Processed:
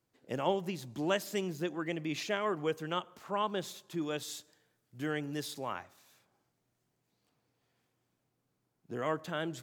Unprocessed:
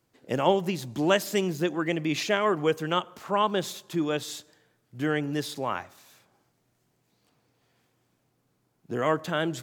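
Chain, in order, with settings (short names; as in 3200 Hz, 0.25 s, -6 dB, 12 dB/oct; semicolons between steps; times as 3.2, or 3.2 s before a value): 4.01–5.73 high shelf 4200 Hz +5.5 dB; gain -8.5 dB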